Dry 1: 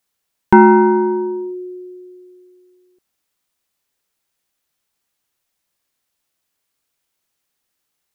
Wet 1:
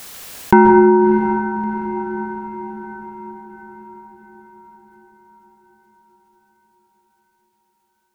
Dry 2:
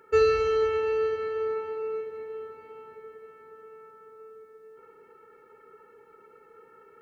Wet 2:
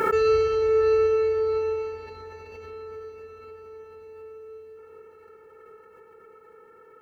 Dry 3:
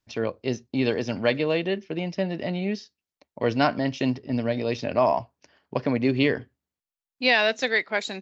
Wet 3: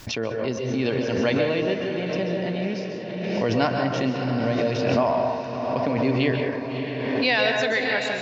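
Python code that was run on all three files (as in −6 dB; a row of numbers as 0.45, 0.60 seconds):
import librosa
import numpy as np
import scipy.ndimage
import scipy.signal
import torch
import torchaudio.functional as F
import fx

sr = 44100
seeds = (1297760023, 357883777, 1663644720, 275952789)

p1 = x + fx.echo_diffused(x, sr, ms=640, feedback_pct=55, wet_db=-8.0, dry=0)
p2 = fx.rev_plate(p1, sr, seeds[0], rt60_s=0.87, hf_ratio=0.45, predelay_ms=120, drr_db=3.0)
p3 = fx.pre_swell(p2, sr, db_per_s=29.0)
y = p3 * librosa.db_to_amplitude(-2.0)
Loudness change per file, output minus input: −2.5, +5.0, +1.5 LU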